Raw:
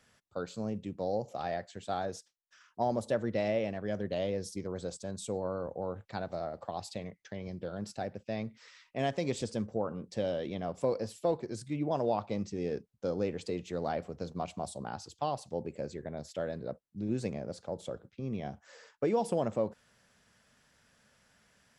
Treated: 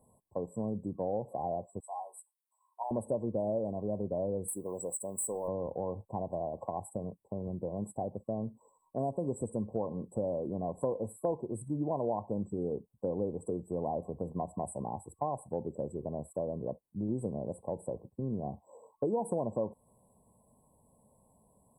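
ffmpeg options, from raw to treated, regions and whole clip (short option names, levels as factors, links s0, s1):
-filter_complex "[0:a]asettb=1/sr,asplit=3[s0][s1][s2];[s0]atrim=end=1.804[s3];[s1]atrim=start=1.8:end=2.91,asetpts=PTS-STARTPTS,afade=t=in:d=0.004:c=qsin,afade=t=out:st=1.106:d=0.004:c=qsin,highpass=f=1000:w=0.5412,highpass=f=1000:w=1.3066,asplit=2[s4][s5];[s5]adelay=16,volume=0.531[s6];[s4][s6]amix=inputs=2:normalize=0,atrim=end_sample=48951[s7];[s2]atrim=start=2.906[s8];[s3][s7]acrossfade=d=0.004:c1=hsin:c2=qsin[s9];[s9][s8]acrossfade=d=0.004:c1=qsin:c2=hsin,asettb=1/sr,asplit=3[s10][s11][s12];[s10]atrim=end=4.484[s13];[s11]atrim=start=4.48:end=5.48,asetpts=PTS-STARTPTS,afade=t=in:d=0.004:c=qsin,afade=t=out:st=0.996:d=0.004:c=qsin,aemphasis=mode=production:type=riaa,asoftclip=type=hard:threshold=0.0282[s14];[s12]atrim=start=5.476[s15];[s13][s14]acrossfade=d=0.004:c1=hsin:c2=qsin[s16];[s16][s15]acrossfade=d=0.004:c1=qsin:c2=hsin,afftfilt=real='re*(1-between(b*sr/4096,1100,7700))':imag='im*(1-between(b*sr/4096,1100,7700))':win_size=4096:overlap=0.75,acompressor=threshold=0.0126:ratio=2,volume=1.68"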